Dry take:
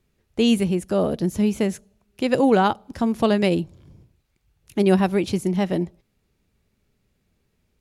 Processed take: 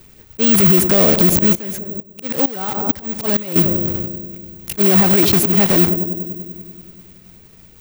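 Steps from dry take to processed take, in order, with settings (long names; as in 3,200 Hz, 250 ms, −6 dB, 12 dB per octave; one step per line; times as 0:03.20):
one scale factor per block 3 bits
volume swells 392 ms
feedback echo with a low-pass in the loop 97 ms, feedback 79%, low-pass 930 Hz, level −18 dB
bad sample-rate conversion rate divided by 2×, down none, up zero stuff
boost into a limiter +20.5 dB
0:01.55–0:03.56: tremolo with a ramp in dB swelling 2.2 Hz, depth 19 dB
level −1 dB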